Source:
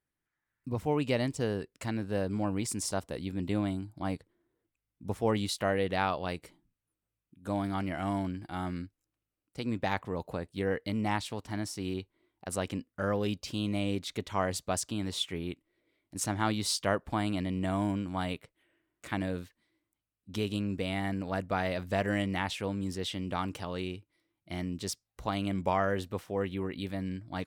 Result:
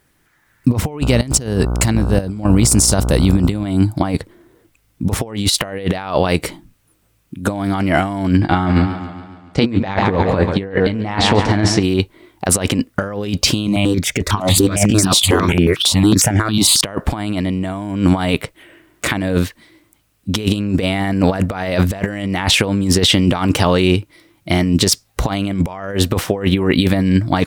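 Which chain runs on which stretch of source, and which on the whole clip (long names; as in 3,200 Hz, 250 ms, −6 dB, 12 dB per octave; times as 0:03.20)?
0:01.00–0:03.64: bass and treble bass +7 dB, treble +8 dB + sample-and-hold tremolo 4.1 Hz, depth 95% + hum with harmonics 60 Hz, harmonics 25, −46 dBFS −7 dB per octave
0:08.37–0:11.83: high-frequency loss of the air 110 metres + double-tracking delay 21 ms −9.5 dB + feedback echo with a swinging delay time 140 ms, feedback 56%, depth 79 cents, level −14 dB
0:13.67–0:16.81: delay that plays each chunk backwards 619 ms, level −2.5 dB + step-sequenced phaser 11 Hz 450–3,900 Hz
whole clip: compressor whose output falls as the input rises −37 dBFS, ratio −0.5; boost into a limiter +24 dB; level −1 dB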